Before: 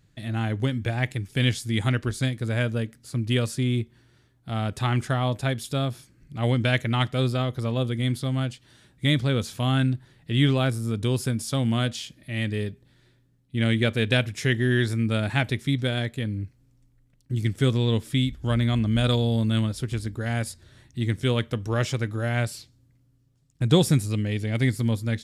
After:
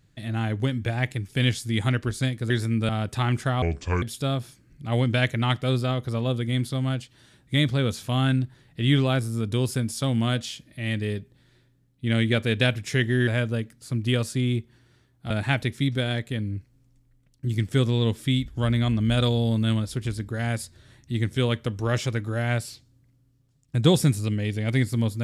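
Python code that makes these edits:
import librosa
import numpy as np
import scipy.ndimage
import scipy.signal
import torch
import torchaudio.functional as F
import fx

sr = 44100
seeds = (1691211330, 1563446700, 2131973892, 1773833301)

y = fx.edit(x, sr, fx.swap(start_s=2.5, length_s=2.03, other_s=14.78, other_length_s=0.39),
    fx.speed_span(start_s=5.26, length_s=0.27, speed=0.67), tone=tone)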